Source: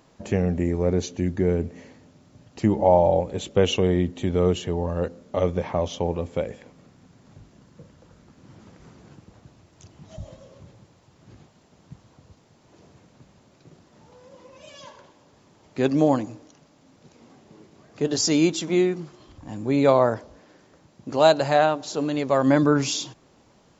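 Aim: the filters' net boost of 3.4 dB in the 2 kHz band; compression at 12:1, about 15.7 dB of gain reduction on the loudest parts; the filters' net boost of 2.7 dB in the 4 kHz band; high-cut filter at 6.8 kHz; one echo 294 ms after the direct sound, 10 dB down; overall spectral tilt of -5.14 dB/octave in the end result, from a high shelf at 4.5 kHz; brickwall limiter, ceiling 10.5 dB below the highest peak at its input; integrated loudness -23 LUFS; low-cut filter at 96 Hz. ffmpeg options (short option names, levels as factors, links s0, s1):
-af "highpass=96,lowpass=6800,equalizer=f=2000:t=o:g=4.5,equalizer=f=4000:t=o:g=7,highshelf=f=4500:g=-8.5,acompressor=threshold=0.0447:ratio=12,alimiter=limit=0.0631:level=0:latency=1,aecho=1:1:294:0.316,volume=4.22"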